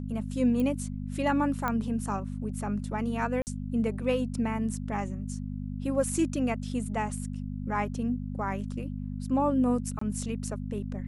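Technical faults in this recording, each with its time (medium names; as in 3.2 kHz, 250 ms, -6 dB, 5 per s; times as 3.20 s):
hum 50 Hz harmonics 5 -35 dBFS
0.60 s: pop -20 dBFS
1.68 s: pop -16 dBFS
3.42–3.47 s: dropout 49 ms
9.99–10.01 s: dropout 24 ms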